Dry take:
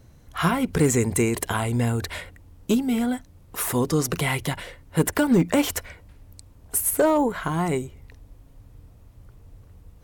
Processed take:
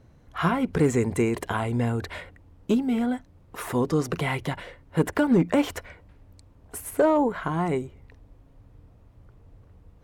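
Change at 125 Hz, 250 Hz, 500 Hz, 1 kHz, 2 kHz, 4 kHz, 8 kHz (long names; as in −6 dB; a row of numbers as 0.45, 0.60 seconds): −2.5, −1.5, −0.5, −1.0, −3.0, −6.0, −12.5 decibels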